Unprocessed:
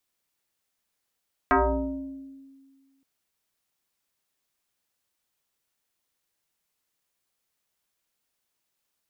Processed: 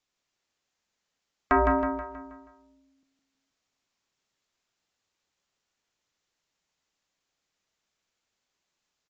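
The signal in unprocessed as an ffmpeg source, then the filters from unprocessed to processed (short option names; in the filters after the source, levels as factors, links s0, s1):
-f lavfi -i "aevalsrc='0.168*pow(10,-3*t/1.8)*sin(2*PI*271*t+4.6*pow(10,-3*t/1.33)*sin(2*PI*1.22*271*t))':d=1.52:s=44100"
-filter_complex "[0:a]asplit=2[s0][s1];[s1]aecho=0:1:160|320|480|640|800|960:0.562|0.264|0.124|0.0584|0.0274|0.0129[s2];[s0][s2]amix=inputs=2:normalize=0" -ar 16000 -c:a aac -b:a 32k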